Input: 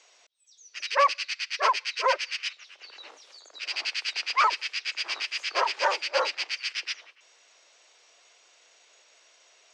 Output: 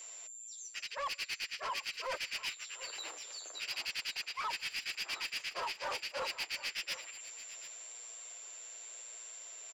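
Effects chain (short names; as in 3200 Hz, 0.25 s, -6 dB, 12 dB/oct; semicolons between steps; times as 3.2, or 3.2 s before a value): whine 7300 Hz -48 dBFS; reverse; compressor 16:1, threshold -34 dBFS, peak gain reduction 18 dB; reverse; flange 0.96 Hz, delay 5.3 ms, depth 8.4 ms, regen -19%; soft clip -38 dBFS, distortion -12 dB; transient shaper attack +1 dB, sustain -6 dB; on a send: echo 0.736 s -15.5 dB; on the sum: gain +5.5 dB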